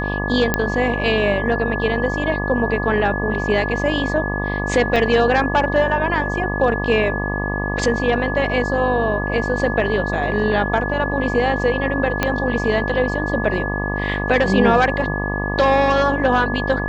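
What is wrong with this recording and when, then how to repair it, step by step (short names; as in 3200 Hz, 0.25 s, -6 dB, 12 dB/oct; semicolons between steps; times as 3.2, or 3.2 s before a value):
buzz 50 Hz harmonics 24 -24 dBFS
tone 1700 Hz -25 dBFS
0.54 pop -2 dBFS
4.96 gap 3.2 ms
12.23 pop -3 dBFS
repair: de-click; notch 1700 Hz, Q 30; de-hum 50 Hz, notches 24; interpolate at 4.96, 3.2 ms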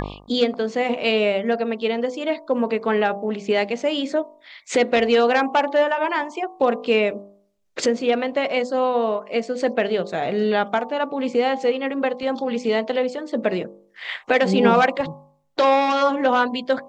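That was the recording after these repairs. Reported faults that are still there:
12.23 pop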